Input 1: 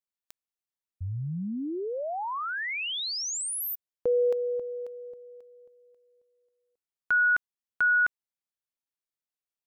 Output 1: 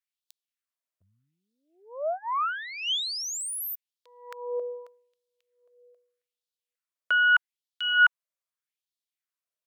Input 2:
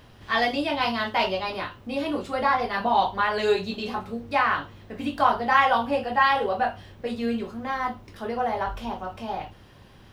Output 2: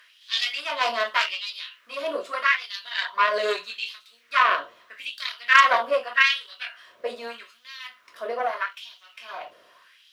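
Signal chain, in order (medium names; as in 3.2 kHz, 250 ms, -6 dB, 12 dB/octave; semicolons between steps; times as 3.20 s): Chebyshev shaper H 4 -9 dB, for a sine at -4 dBFS; Butterworth band-stop 820 Hz, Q 3.6; LFO high-pass sine 0.81 Hz 590–3800 Hz; trim -1 dB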